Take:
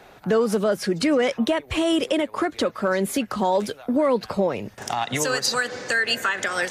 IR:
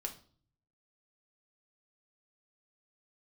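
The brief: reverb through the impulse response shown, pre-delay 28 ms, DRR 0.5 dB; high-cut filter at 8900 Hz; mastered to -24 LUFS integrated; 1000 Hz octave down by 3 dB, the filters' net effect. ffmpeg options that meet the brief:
-filter_complex "[0:a]lowpass=8.9k,equalizer=f=1k:t=o:g=-4,asplit=2[a][b];[1:a]atrim=start_sample=2205,adelay=28[c];[b][c]afir=irnorm=-1:irlink=0,volume=0.5dB[d];[a][d]amix=inputs=2:normalize=0,volume=-3dB"

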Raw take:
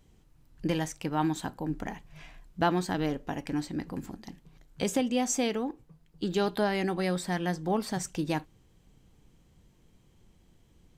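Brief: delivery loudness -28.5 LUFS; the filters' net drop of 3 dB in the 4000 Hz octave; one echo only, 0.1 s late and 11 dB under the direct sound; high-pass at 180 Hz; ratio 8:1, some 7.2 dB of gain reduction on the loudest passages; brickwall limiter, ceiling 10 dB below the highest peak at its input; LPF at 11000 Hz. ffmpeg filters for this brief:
-af "highpass=180,lowpass=11k,equalizer=f=4k:t=o:g=-4,acompressor=threshold=-29dB:ratio=8,alimiter=level_in=4dB:limit=-24dB:level=0:latency=1,volume=-4dB,aecho=1:1:100:0.282,volume=10dB"

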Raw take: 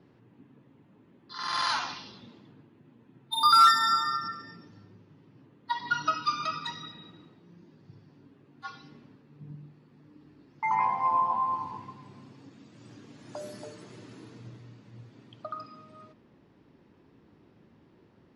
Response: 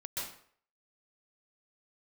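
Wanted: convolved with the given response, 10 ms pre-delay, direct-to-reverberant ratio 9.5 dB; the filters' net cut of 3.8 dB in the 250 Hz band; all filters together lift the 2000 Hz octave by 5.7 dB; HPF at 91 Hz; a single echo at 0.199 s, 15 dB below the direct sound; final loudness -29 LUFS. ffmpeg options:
-filter_complex "[0:a]highpass=91,equalizer=f=250:t=o:g=-5,equalizer=f=2k:t=o:g=7,aecho=1:1:199:0.178,asplit=2[a][b];[1:a]atrim=start_sample=2205,adelay=10[c];[b][c]afir=irnorm=-1:irlink=0,volume=-11dB[d];[a][d]amix=inputs=2:normalize=0,volume=-5.5dB"

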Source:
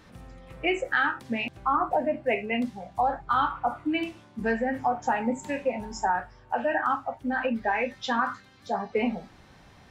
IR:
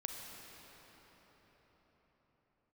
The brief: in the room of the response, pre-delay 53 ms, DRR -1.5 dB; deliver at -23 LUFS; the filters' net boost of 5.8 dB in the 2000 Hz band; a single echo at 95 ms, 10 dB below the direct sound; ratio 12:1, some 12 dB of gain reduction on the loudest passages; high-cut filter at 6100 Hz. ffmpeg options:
-filter_complex "[0:a]lowpass=6.1k,equalizer=f=2k:t=o:g=7.5,acompressor=threshold=-27dB:ratio=12,aecho=1:1:95:0.316,asplit=2[a][b];[1:a]atrim=start_sample=2205,adelay=53[c];[b][c]afir=irnorm=-1:irlink=0,volume=2dB[d];[a][d]amix=inputs=2:normalize=0,volume=5.5dB"

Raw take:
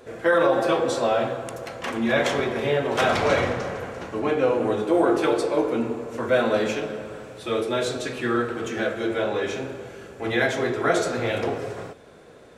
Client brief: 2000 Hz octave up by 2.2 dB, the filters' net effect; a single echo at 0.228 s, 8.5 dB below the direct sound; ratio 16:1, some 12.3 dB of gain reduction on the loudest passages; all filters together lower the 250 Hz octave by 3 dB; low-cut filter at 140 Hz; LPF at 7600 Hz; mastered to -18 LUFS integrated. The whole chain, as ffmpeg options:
-af "highpass=140,lowpass=7.6k,equalizer=f=250:t=o:g=-4,equalizer=f=2k:t=o:g=3,acompressor=threshold=-28dB:ratio=16,aecho=1:1:228:0.376,volume=14dB"

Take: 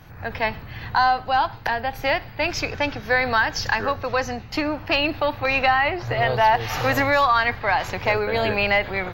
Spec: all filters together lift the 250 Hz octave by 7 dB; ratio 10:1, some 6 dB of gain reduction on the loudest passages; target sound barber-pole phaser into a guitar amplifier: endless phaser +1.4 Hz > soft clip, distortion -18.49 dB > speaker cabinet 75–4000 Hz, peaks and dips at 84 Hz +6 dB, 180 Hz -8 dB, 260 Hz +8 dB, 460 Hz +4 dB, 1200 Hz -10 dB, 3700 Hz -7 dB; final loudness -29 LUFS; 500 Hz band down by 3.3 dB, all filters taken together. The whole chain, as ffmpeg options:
-filter_complex "[0:a]equalizer=f=250:t=o:g=5.5,equalizer=f=500:t=o:g=-7,acompressor=threshold=-21dB:ratio=10,asplit=2[a][b];[b]afreqshift=1.4[c];[a][c]amix=inputs=2:normalize=1,asoftclip=threshold=-20.5dB,highpass=75,equalizer=f=84:t=q:w=4:g=6,equalizer=f=180:t=q:w=4:g=-8,equalizer=f=260:t=q:w=4:g=8,equalizer=f=460:t=q:w=4:g=4,equalizer=f=1.2k:t=q:w=4:g=-10,equalizer=f=3.7k:t=q:w=4:g=-7,lowpass=f=4k:w=0.5412,lowpass=f=4k:w=1.3066,volume=2dB"

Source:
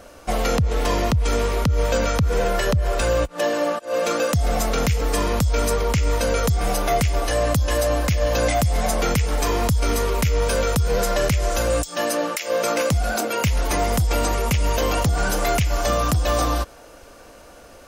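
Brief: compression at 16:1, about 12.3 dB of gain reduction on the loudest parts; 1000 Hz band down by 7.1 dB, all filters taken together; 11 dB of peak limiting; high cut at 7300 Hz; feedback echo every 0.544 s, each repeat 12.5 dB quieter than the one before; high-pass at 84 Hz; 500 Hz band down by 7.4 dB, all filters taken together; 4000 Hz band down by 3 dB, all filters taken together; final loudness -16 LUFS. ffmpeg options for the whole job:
-af "highpass=84,lowpass=7.3k,equalizer=f=500:t=o:g=-6.5,equalizer=f=1k:t=o:g=-7.5,equalizer=f=4k:t=o:g=-3,acompressor=threshold=-30dB:ratio=16,alimiter=level_in=5.5dB:limit=-24dB:level=0:latency=1,volume=-5.5dB,aecho=1:1:544|1088|1632:0.237|0.0569|0.0137,volume=22.5dB"

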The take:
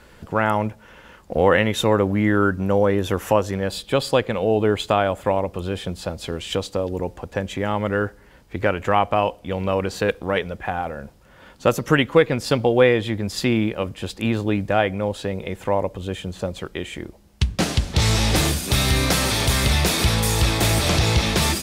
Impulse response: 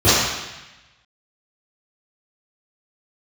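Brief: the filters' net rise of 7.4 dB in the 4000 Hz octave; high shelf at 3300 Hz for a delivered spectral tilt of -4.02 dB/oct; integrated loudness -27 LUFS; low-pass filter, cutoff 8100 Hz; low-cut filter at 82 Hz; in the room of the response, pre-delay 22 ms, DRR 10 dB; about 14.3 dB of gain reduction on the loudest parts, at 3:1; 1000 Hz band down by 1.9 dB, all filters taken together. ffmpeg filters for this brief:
-filter_complex "[0:a]highpass=82,lowpass=8.1k,equalizer=f=1k:t=o:g=-3.5,highshelf=f=3.3k:g=5.5,equalizer=f=4k:t=o:g=5.5,acompressor=threshold=-31dB:ratio=3,asplit=2[a][b];[1:a]atrim=start_sample=2205,adelay=22[c];[b][c]afir=irnorm=-1:irlink=0,volume=-36dB[d];[a][d]amix=inputs=2:normalize=0,volume=3.5dB"

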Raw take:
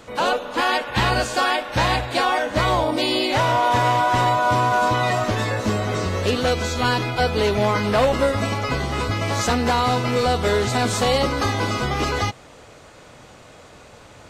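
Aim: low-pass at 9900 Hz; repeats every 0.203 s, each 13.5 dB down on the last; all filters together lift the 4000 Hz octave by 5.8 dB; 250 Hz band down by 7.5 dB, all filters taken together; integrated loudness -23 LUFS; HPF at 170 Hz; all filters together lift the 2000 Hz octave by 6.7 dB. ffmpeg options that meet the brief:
-af "highpass=170,lowpass=9.9k,equalizer=f=250:t=o:g=-8.5,equalizer=f=2k:t=o:g=8,equalizer=f=4k:t=o:g=4.5,aecho=1:1:203|406:0.211|0.0444,volume=-5dB"

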